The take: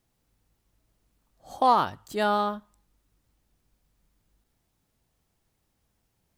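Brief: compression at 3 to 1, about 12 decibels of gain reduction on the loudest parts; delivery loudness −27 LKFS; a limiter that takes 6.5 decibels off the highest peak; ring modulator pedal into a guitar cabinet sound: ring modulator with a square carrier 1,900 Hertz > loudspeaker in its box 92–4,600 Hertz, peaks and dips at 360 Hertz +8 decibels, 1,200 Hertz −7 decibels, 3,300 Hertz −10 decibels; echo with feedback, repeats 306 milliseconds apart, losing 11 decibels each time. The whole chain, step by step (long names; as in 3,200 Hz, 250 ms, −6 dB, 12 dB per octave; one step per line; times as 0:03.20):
downward compressor 3 to 1, threshold −32 dBFS
brickwall limiter −25.5 dBFS
repeating echo 306 ms, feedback 28%, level −11 dB
ring modulator with a square carrier 1,900 Hz
loudspeaker in its box 92–4,600 Hz, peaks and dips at 360 Hz +8 dB, 1,200 Hz −7 dB, 3,300 Hz −10 dB
level +12 dB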